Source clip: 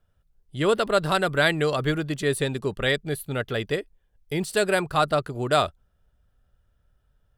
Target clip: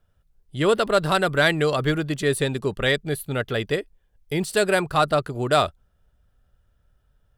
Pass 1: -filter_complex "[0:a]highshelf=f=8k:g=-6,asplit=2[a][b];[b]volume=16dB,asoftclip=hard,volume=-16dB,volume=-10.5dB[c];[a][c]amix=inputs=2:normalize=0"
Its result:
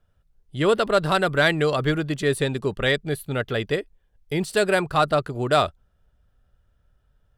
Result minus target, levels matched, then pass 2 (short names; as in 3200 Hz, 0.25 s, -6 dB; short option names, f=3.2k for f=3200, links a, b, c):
8000 Hz band -3.0 dB
-filter_complex "[0:a]asplit=2[a][b];[b]volume=16dB,asoftclip=hard,volume=-16dB,volume=-10.5dB[c];[a][c]amix=inputs=2:normalize=0"